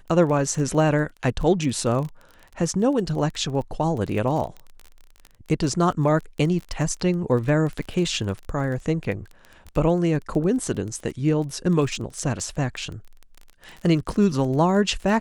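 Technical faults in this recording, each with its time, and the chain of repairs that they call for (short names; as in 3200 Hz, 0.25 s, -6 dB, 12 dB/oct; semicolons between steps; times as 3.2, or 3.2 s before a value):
crackle 22/s -30 dBFS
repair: de-click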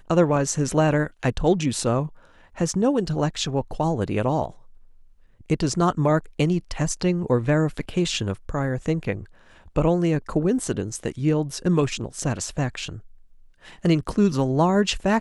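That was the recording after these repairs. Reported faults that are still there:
none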